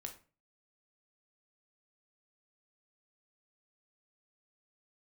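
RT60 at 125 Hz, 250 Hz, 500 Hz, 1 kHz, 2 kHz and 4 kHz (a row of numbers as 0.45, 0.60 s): 0.50, 0.45, 0.40, 0.35, 0.30, 0.25 s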